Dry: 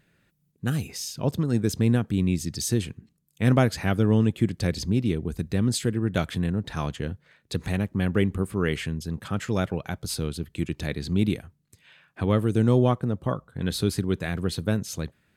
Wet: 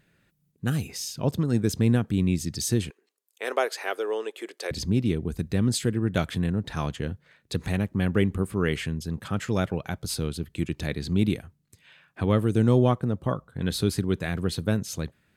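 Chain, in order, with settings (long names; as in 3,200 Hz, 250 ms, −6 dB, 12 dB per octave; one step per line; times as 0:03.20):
0:02.90–0:04.71: elliptic high-pass filter 400 Hz, stop band 80 dB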